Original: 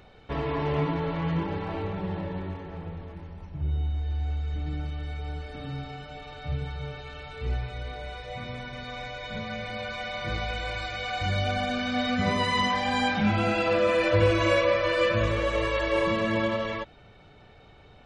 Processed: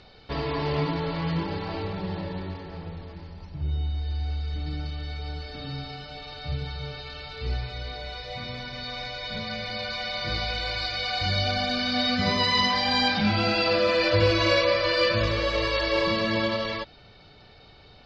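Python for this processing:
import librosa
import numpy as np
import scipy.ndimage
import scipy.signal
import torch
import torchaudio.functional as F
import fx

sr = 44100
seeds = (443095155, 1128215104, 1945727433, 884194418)

y = fx.lowpass_res(x, sr, hz=4700.0, q=8.3)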